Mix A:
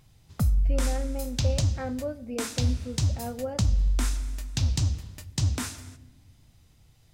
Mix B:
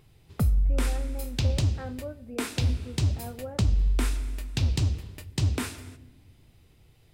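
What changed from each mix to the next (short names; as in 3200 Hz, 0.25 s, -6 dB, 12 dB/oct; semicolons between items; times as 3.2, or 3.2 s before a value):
speech: add ladder low-pass 2300 Hz, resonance 25%; background: add fifteen-band EQ 400 Hz +9 dB, 2500 Hz +4 dB, 6300 Hz -7 dB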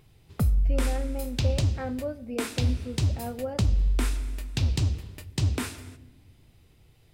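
speech: remove ladder low-pass 2300 Hz, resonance 25%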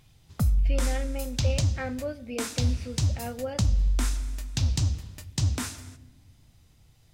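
speech: add weighting filter D; background: add fifteen-band EQ 400 Hz -9 dB, 2500 Hz -4 dB, 6300 Hz +7 dB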